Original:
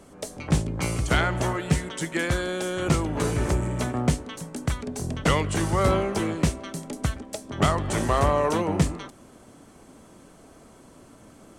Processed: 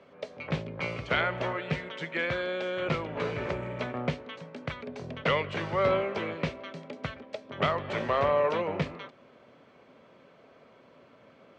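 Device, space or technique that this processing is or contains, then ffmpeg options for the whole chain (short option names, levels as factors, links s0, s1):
kitchen radio: -af "highpass=170,equalizer=f=200:t=q:w=4:g=-6,equalizer=f=310:t=q:w=4:g=-10,equalizer=f=550:t=q:w=4:g=5,equalizer=f=790:t=q:w=4:g=-4,equalizer=f=2300:t=q:w=4:g=5,lowpass=f=3900:w=0.5412,lowpass=f=3900:w=1.3066,volume=0.668"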